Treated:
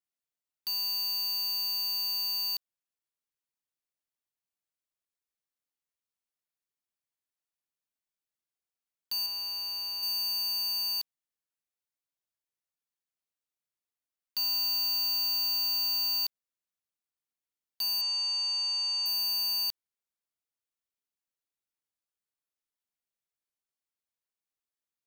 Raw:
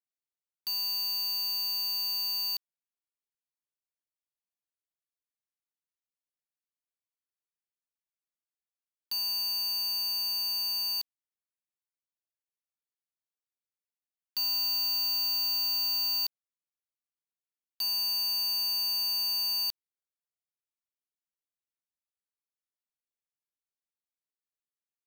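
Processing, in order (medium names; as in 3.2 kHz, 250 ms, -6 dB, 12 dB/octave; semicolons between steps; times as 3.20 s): 9.26–10.03 s: treble shelf 4.8 kHz -8 dB; 18.01–19.06 s: brick-wall FIR band-pass 490–8200 Hz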